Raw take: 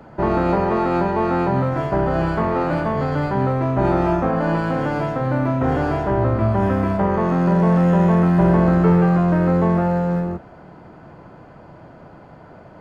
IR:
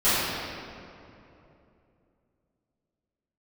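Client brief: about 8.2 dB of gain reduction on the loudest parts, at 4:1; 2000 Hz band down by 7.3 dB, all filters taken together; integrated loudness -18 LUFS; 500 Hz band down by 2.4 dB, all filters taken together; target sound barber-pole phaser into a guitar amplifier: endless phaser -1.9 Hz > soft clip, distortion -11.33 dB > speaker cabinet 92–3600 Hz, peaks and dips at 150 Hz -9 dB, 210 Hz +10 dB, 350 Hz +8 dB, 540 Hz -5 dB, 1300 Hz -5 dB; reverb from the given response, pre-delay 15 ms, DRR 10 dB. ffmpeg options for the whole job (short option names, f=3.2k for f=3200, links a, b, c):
-filter_complex "[0:a]equalizer=f=500:t=o:g=-7,equalizer=f=2k:t=o:g=-7.5,acompressor=threshold=-23dB:ratio=4,asplit=2[a][b];[1:a]atrim=start_sample=2205,adelay=15[c];[b][c]afir=irnorm=-1:irlink=0,volume=-28.5dB[d];[a][d]amix=inputs=2:normalize=0,asplit=2[e][f];[f]afreqshift=-1.9[g];[e][g]amix=inputs=2:normalize=1,asoftclip=threshold=-27dB,highpass=92,equalizer=f=150:t=q:w=4:g=-9,equalizer=f=210:t=q:w=4:g=10,equalizer=f=350:t=q:w=4:g=8,equalizer=f=540:t=q:w=4:g=-5,equalizer=f=1.3k:t=q:w=4:g=-5,lowpass=f=3.6k:w=0.5412,lowpass=f=3.6k:w=1.3066,volume=13dB"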